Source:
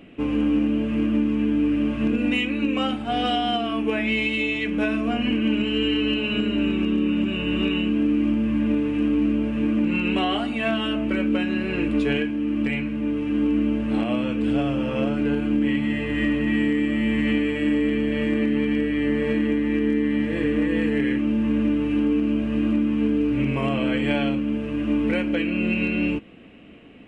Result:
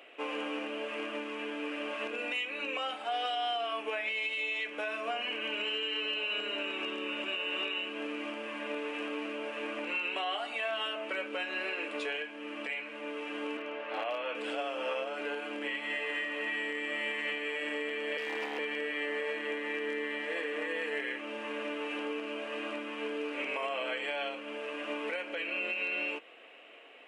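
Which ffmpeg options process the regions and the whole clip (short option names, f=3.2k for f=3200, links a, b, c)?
-filter_complex "[0:a]asettb=1/sr,asplit=3[a][b][c];[a]atrim=end=13.574[d];[b]atrim=start=13.57:end=14.35,asetpts=PTS-STARTPTS,afade=t=in:d=0.004:c=qsin,afade=t=out:st=0.776:d=0.004:c=qsin,highpass=340,lowpass=3.1k,asoftclip=type=hard:threshold=-20dB[e];[c]atrim=start=14.346[f];[d][e]acrossfade=d=0.004:c1=hsin:c2=qsin[g];[g][f]acrossfade=d=0.004:c1=qsin:c2=hsin,asettb=1/sr,asplit=3[h][i][j];[h]atrim=end=18.174[k];[i]atrim=start=18.17:end=18.59,asetpts=PTS-STARTPTS,afade=t=in:d=0.004:c=qsin,afade=t=out:st=0.416:d=0.004:c=qsin,asuperstop=centerf=800:order=12:qfactor=1.2,asoftclip=type=hard:threshold=-18.5dB[l];[j]atrim=start=18.586[m];[k][l]acrossfade=d=0.004:c1=hsin:c2=qsin[n];[n][m]acrossfade=d=0.004:c1=qsin:c2=hsin,highpass=f=520:w=0.5412,highpass=f=520:w=1.3066,alimiter=level_in=1.5dB:limit=-24dB:level=0:latency=1:release=234,volume=-1.5dB"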